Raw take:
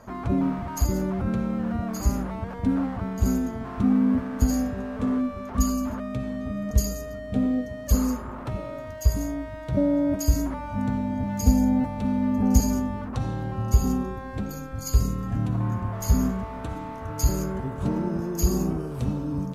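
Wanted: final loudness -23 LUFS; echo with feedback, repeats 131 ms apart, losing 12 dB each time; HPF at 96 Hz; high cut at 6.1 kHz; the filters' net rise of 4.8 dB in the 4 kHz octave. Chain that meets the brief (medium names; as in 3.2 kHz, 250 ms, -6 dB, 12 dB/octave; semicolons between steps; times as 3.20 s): high-pass 96 Hz; low-pass 6.1 kHz; peaking EQ 4 kHz +7.5 dB; feedback delay 131 ms, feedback 25%, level -12 dB; trim +4.5 dB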